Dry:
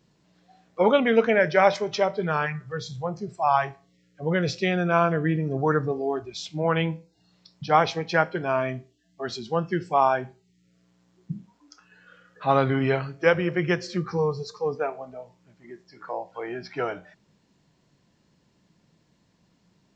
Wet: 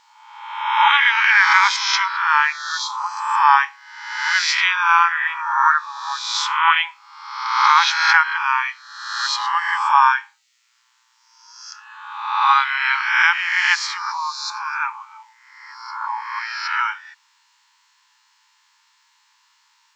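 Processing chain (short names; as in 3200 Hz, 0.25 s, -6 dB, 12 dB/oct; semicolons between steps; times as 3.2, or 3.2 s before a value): spectral swells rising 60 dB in 1.06 s; brick-wall FIR high-pass 830 Hz; maximiser +11 dB; gain -1 dB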